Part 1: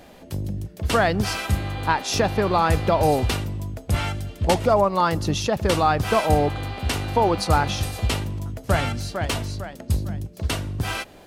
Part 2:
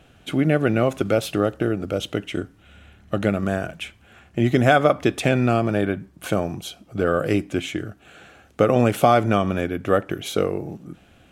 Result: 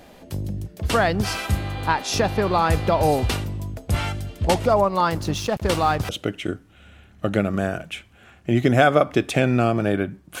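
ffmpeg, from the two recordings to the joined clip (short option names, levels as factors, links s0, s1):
-filter_complex "[0:a]asettb=1/sr,asplit=3[s0][s1][s2];[s0]atrim=end=5.104[s3];[s1]atrim=start=5.1:end=6.09,asetpts=PTS-STARTPTS,afade=t=in:d=0.004:c=qsin,afade=t=out:st=0.986:d=0.004:c=qsin,aeval=exprs='sgn(val(0))*max(abs(val(0))-0.015,0)':c=same[s4];[s2]atrim=start=6.086[s5];[s3][s4]acrossfade=d=0.004:c1=hsin:c2=qsin[s6];[s6][s5]acrossfade=d=0.004:c1=qsin:c2=hsin,apad=whole_dur=10.4,atrim=end=10.4,atrim=end=6.092[s7];[1:a]atrim=start=1.978:end=6.29[s8];[s7][s8]acrossfade=d=0.004:c1=hsin:c2=hsin"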